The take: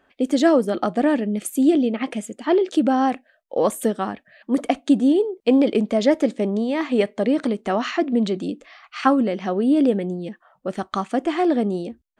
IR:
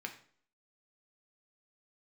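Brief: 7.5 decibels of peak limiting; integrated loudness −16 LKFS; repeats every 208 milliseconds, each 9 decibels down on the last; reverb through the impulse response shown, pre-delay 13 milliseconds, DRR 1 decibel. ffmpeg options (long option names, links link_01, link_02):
-filter_complex "[0:a]alimiter=limit=-11.5dB:level=0:latency=1,aecho=1:1:208|416|624|832:0.355|0.124|0.0435|0.0152,asplit=2[link_01][link_02];[1:a]atrim=start_sample=2205,adelay=13[link_03];[link_02][link_03]afir=irnorm=-1:irlink=0,volume=-1dB[link_04];[link_01][link_04]amix=inputs=2:normalize=0,volume=4dB"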